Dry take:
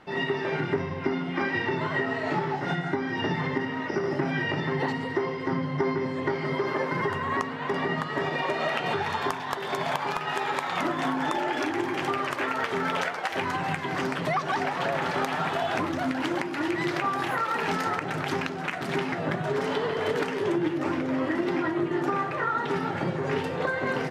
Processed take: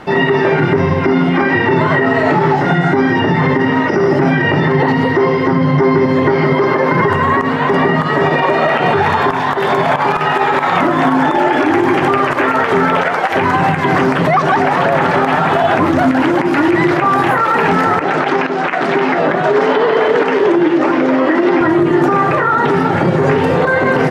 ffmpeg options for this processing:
-filter_complex "[0:a]asettb=1/sr,asplit=3[a][b][c];[a]atrim=end=4.744[d];[b]atrim=start=4.74:end=7.08,asetpts=PTS-STARTPTS,afade=t=in:d=0.004:c=qsin,afade=t=out:st=2.336:d=0.004:c=qsin,equalizer=f=7.9k:t=o:w=0.27:g=-12[e];[c]atrim=start=7.076[f];[d][e]acrossfade=d=0.004:c1=hsin:c2=qsin[g];[g][f]acrossfade=d=0.004:c1=qsin:c2=hsin,asettb=1/sr,asplit=3[h][i][j];[h]atrim=end=18.014[k];[i]atrim=start=18.01:end=21.61,asetpts=PTS-STARTPTS,afade=t=in:d=0.004:c=qsin,afade=t=out:st=3.596:d=0.004:c=qsin,highpass=290,lowpass=5.7k[l];[j]atrim=start=21.606[m];[k][l]acrossfade=d=0.004:c1=hsin:c2=qsin[n];[n][m]acrossfade=d=0.004:c1=qsin:c2=hsin,equalizer=f=3.4k:t=o:w=2.2:g=-3.5,acrossover=split=2900[o][p];[p]acompressor=threshold=-52dB:ratio=4:attack=1:release=60[q];[o][q]amix=inputs=2:normalize=0,alimiter=level_in=22.5dB:limit=-1dB:release=50:level=0:latency=1,volume=-3dB"

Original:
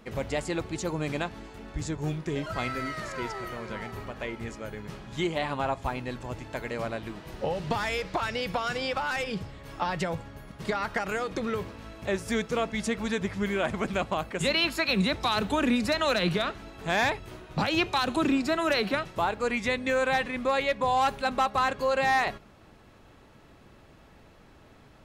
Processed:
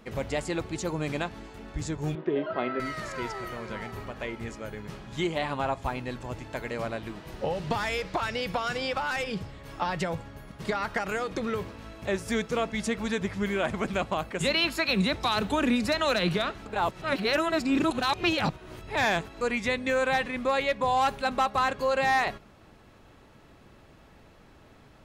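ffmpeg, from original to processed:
-filter_complex "[0:a]asettb=1/sr,asplit=3[a][b][c];[a]atrim=end=2.154[d];[b]atrim=start=2.15:end=2.8,asetpts=PTS-STARTPTS,afade=t=in:d=0.004:c=qsin,afade=t=out:st=0.646:d=0.004:c=qsin,highpass=220,equalizer=f=250:t=q:w=4:g=4,equalizer=f=380:t=q:w=4:g=9,equalizer=f=620:t=q:w=4:g=6,equalizer=f=2.3k:t=q:w=4:g=-6,lowpass=f=3.1k:w=0.5412,lowpass=f=3.1k:w=1.3066[e];[c]atrim=start=2.796[f];[d][e]acrossfade=d=0.004:c1=hsin:c2=qsin[g];[g][f]acrossfade=d=0.004:c1=qsin:c2=hsin,asplit=3[h][i][j];[h]atrim=end=16.662[k];[i]atrim=start=16.658:end=19.412,asetpts=PTS-STARTPTS,areverse[l];[j]atrim=start=19.408[m];[k][l]acrossfade=d=0.004:c1=hsin:c2=hsin[n];[n][m]acrossfade=d=0.004:c1=hsin:c2=hsin"

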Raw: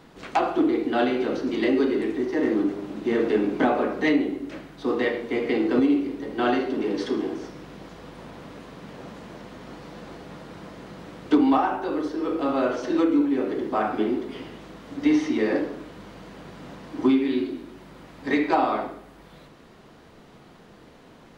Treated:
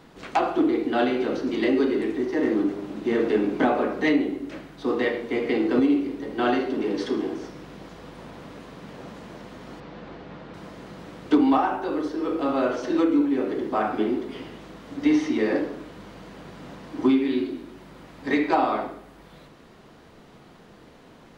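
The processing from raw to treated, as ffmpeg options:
-filter_complex "[0:a]asettb=1/sr,asplit=3[a][b][c];[a]atrim=end=9.804[d];[b]atrim=start=9.8:end=10.54,asetpts=PTS-STARTPTS,afade=t=in:d=0.004:c=qsin,afade=t=out:st=0.736:d=0.004:c=qsin,lowpass=3.8k[e];[c]atrim=start=10.536[f];[d][e]acrossfade=d=0.004:c1=hsin:c2=qsin[g];[g][f]acrossfade=d=0.004:c1=qsin:c2=hsin"

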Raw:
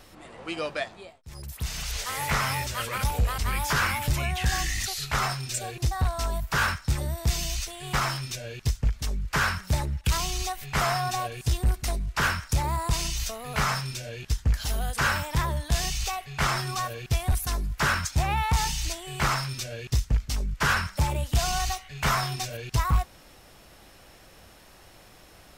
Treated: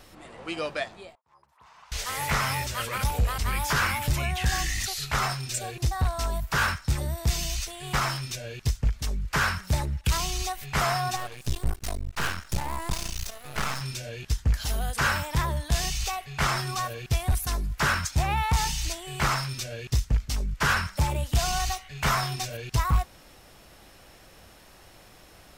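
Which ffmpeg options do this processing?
-filter_complex "[0:a]asettb=1/sr,asplit=3[a][b][c];[a]atrim=end=1.154[d];[b]atrim=start=1.15:end=1.92,asetpts=PTS-STARTPTS,afade=t=in:d=0.004:c=qsin,afade=t=out:st=0.766:d=0.004:c=qsin,bandpass=f=1k:t=q:w=4.9[e];[c]atrim=start=1.916[f];[d][e]acrossfade=d=0.004:c1=hsin:c2=qsin[g];[g][f]acrossfade=d=0.004:c1=qsin:c2=hsin,asettb=1/sr,asplit=3[h][i][j];[h]atrim=end=11.164[k];[i]atrim=start=11.16:end=13.81,asetpts=PTS-STARTPTS,afade=t=in:d=0.004:c=qsin,afade=t=out:st=2.646:d=0.004:c=qsin,aeval=exprs='max(val(0),0)':c=same[l];[j]atrim=start=13.806[m];[k][l]acrossfade=d=0.004:c1=hsin:c2=qsin[n];[n][m]acrossfade=d=0.004:c1=qsin:c2=hsin"

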